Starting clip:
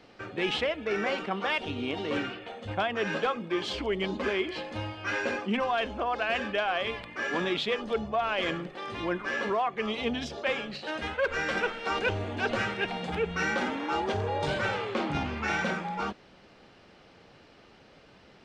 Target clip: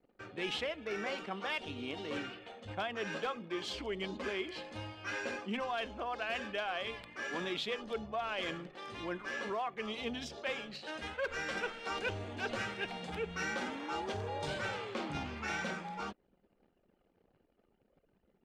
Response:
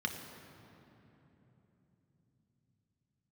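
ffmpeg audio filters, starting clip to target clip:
-af "anlmdn=0.00398,crystalizer=i=1.5:c=0,volume=0.355"

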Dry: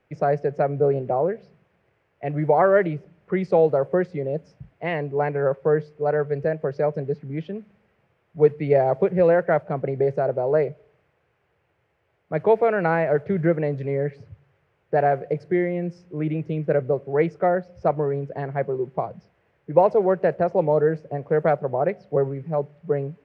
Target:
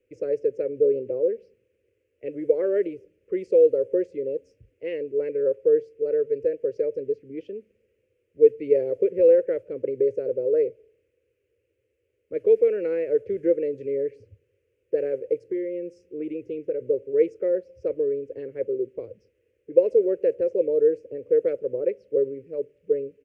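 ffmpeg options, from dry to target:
-filter_complex "[0:a]firequalizer=gain_entry='entry(110,0);entry(150,-22);entry(250,1);entry(510,10);entry(720,-28);entry(1500,-13);entry(2600,1);entry(3800,-8);entry(6700,5)':delay=0.05:min_phase=1,asplit=3[s0][s1][s2];[s0]afade=t=out:st=15.38:d=0.02[s3];[s1]acompressor=threshold=0.1:ratio=2.5,afade=t=in:st=15.38:d=0.02,afade=t=out:st=16.8:d=0.02[s4];[s2]afade=t=in:st=16.8:d=0.02[s5];[s3][s4][s5]amix=inputs=3:normalize=0,volume=0.473"

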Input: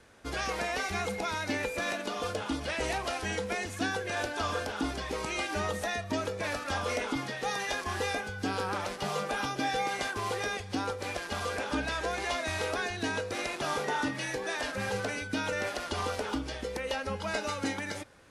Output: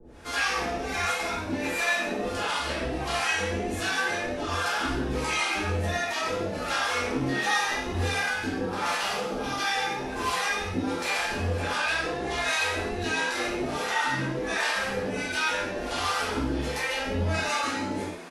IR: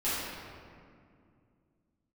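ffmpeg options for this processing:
-filter_complex "[0:a]acrossover=split=1300[s0][s1];[s0]alimiter=level_in=1.78:limit=0.0631:level=0:latency=1,volume=0.562[s2];[s2][s1]amix=inputs=2:normalize=0,acompressor=threshold=0.0178:ratio=6,acrossover=split=630[s3][s4];[s3]aeval=exprs='val(0)*(1-1/2+1/2*cos(2*PI*1.4*n/s))':c=same[s5];[s4]aeval=exprs='val(0)*(1-1/2-1/2*cos(2*PI*1.4*n/s))':c=same[s6];[s5][s6]amix=inputs=2:normalize=0,asplit=2[s7][s8];[s8]asoftclip=type=tanh:threshold=0.0158,volume=0.251[s9];[s7][s9]amix=inputs=2:normalize=0,asplit=5[s10][s11][s12][s13][s14];[s11]adelay=142,afreqshift=76,volume=0.282[s15];[s12]adelay=284,afreqshift=152,volume=0.119[s16];[s13]adelay=426,afreqshift=228,volume=0.0495[s17];[s14]adelay=568,afreqshift=304,volume=0.0209[s18];[s10][s15][s16][s17][s18]amix=inputs=5:normalize=0[s19];[1:a]atrim=start_sample=2205,afade=t=out:st=0.19:d=0.01,atrim=end_sample=8820[s20];[s19][s20]afir=irnorm=-1:irlink=0,volume=2"

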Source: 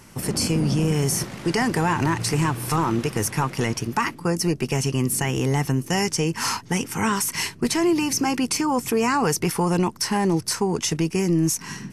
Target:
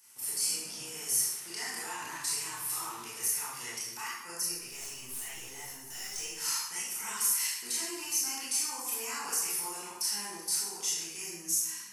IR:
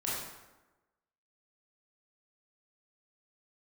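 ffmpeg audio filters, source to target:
-filter_complex "[0:a]aderivative,asettb=1/sr,asplit=3[s0][s1][s2];[s0]atrim=end=4.504[s3];[s1]atrim=start=4.5:end=6.16,asetpts=PTS-STARTPTS,afade=t=in:d=0.004:c=qsin,afade=t=out:st=1.656:d=0.004:c=qsin,aeval=exprs='(tanh(50.1*val(0)+0.3)-tanh(0.3))/50.1':c=same[s4];[s2]atrim=start=6.156[s5];[s3][s4]acrossfade=d=0.004:c1=hsin:c2=qsin[s6];[s6][s5]acrossfade=d=0.004:c1=qsin:c2=hsin[s7];[1:a]atrim=start_sample=2205,afade=t=out:st=0.45:d=0.01,atrim=end_sample=20286[s8];[s7][s8]afir=irnorm=-1:irlink=0,volume=0.501"

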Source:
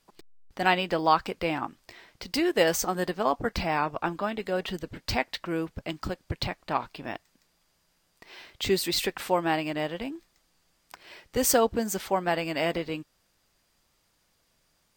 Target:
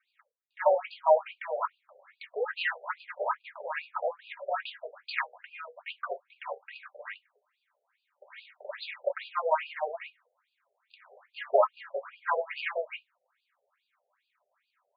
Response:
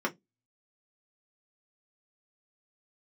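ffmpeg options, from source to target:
-filter_complex "[0:a]aeval=exprs='val(0)*sin(2*PI*160*n/s)':c=same,asettb=1/sr,asplit=3[s0][s1][s2];[s0]atrim=end=2.834[s3];[s1]atrim=start=2.83:end=3.75,asetpts=PTS-STARTPTS,afade=t=in:d=0.004:c=qsin,afade=t=out:st=0.916:d=0.004:c=qsin,aeval=exprs='max(val(0),0)':c=same[s4];[s2]atrim=start=3.746[s5];[s3][s4]acrossfade=d=0.004:c1=hsin:c2=qsin[s6];[s6][s5]acrossfade=d=0.004:c1=qsin:c2=hsin[s7];[1:a]atrim=start_sample=2205,asetrate=48510,aresample=44100[s8];[s7][s8]afir=irnorm=-1:irlink=0,afftfilt=real='re*between(b*sr/1024,570*pow(3500/570,0.5+0.5*sin(2*PI*2.4*pts/sr))/1.41,570*pow(3500/570,0.5+0.5*sin(2*PI*2.4*pts/sr))*1.41)':imag='im*between(b*sr/1024,570*pow(3500/570,0.5+0.5*sin(2*PI*2.4*pts/sr))/1.41,570*pow(3500/570,0.5+0.5*sin(2*PI*2.4*pts/sr))*1.41)':win_size=1024:overlap=0.75,volume=0.891"

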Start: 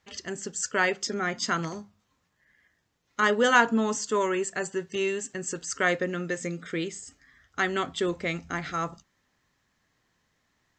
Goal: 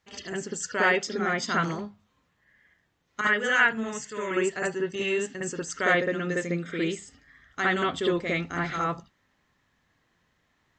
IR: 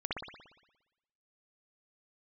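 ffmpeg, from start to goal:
-filter_complex "[0:a]asettb=1/sr,asplit=3[s0][s1][s2];[s0]atrim=end=3.214[s3];[s1]atrim=start=3.21:end=4.31,asetpts=PTS-STARTPTS,afade=t=in:d=0.004:c=qsin,afade=t=out:st=1.096:d=0.004:c=qsin,equalizer=f=125:t=o:w=1:g=4,equalizer=f=250:t=o:w=1:g=-12,equalizer=f=500:t=o:w=1:g=-6,equalizer=f=1000:t=o:w=1:g=-11,equalizer=f=2000:t=o:w=1:g=7,equalizer=f=4000:t=o:w=1:g=-10[s4];[s2]atrim=start=4.306[s5];[s3][s4]acrossfade=d=0.004:c1=hsin:c2=qsin[s6];[s6][s5]acrossfade=d=0.004:c1=qsin:c2=hsin[s7];[1:a]atrim=start_sample=2205,atrim=end_sample=3969[s8];[s7][s8]afir=irnorm=-1:irlink=0"

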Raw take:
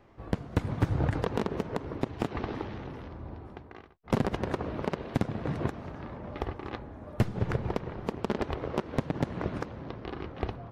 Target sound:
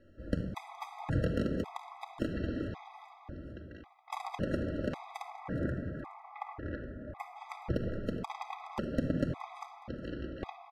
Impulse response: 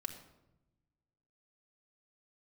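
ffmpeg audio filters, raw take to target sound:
-filter_complex "[0:a]asplit=3[s0][s1][s2];[s0]afade=t=out:st=5.21:d=0.02[s3];[s1]highshelf=f=2600:t=q:w=1.5:g=-8.5,afade=t=in:st=5.21:d=0.02,afade=t=out:st=7.35:d=0.02[s4];[s2]afade=t=in:st=7.35:d=0.02[s5];[s3][s4][s5]amix=inputs=3:normalize=0,aecho=1:1:419|838|1257|1676:0.2|0.0778|0.0303|0.0118[s6];[1:a]atrim=start_sample=2205[s7];[s6][s7]afir=irnorm=-1:irlink=0,afftfilt=real='re*gt(sin(2*PI*0.91*pts/sr)*(1-2*mod(floor(b*sr/1024/650),2)),0)':imag='im*gt(sin(2*PI*0.91*pts/sr)*(1-2*mod(floor(b*sr/1024/650),2)),0)':win_size=1024:overlap=0.75"

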